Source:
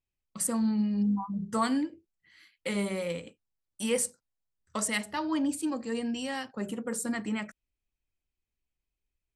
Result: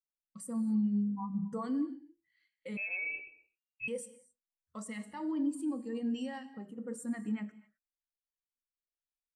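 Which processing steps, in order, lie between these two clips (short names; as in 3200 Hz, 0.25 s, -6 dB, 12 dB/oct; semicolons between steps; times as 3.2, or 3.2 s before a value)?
0.87–1.79 dynamic EQ 470 Hz, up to +8 dB, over -49 dBFS, Q 3.6; 6.38–6.78 compressor 10:1, threshold -37 dBFS, peak gain reduction 9 dB; limiter -27.5 dBFS, peak gain reduction 11.5 dB; non-linear reverb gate 0.29 s flat, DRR 9 dB; 2.77–3.88 inverted band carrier 2800 Hz; spectral expander 1.5:1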